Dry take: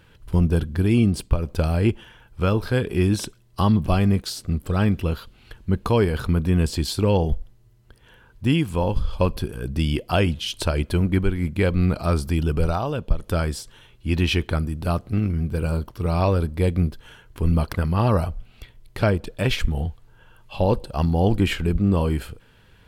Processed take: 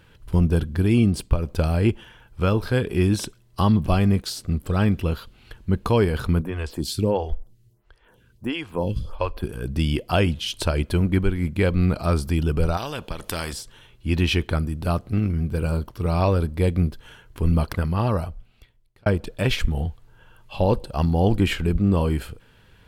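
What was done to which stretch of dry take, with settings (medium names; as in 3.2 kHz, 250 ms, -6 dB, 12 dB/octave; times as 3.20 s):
6.41–9.43 s: lamp-driven phase shifter 1.5 Hz
12.77–13.53 s: spectrum-flattening compressor 2:1
17.68–19.06 s: fade out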